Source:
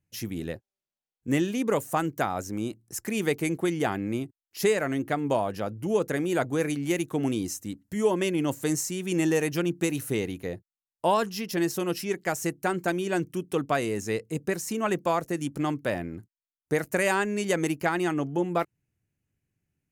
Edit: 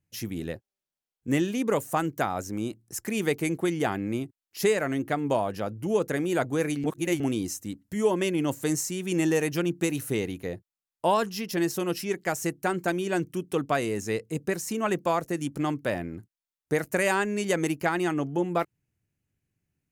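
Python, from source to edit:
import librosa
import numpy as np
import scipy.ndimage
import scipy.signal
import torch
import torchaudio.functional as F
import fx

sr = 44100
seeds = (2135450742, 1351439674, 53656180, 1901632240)

y = fx.edit(x, sr, fx.reverse_span(start_s=6.84, length_s=0.36), tone=tone)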